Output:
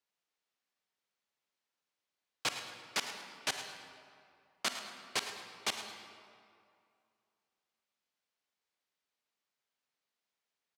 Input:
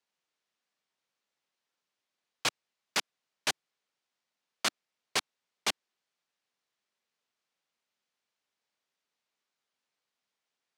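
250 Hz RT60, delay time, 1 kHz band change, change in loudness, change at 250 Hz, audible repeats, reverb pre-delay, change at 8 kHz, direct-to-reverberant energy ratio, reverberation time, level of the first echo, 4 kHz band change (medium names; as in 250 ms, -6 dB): 2.4 s, 107 ms, -3.0 dB, -4.5 dB, -3.5 dB, 1, 37 ms, -4.0 dB, 5.0 dB, 2.4 s, -12.5 dB, -3.5 dB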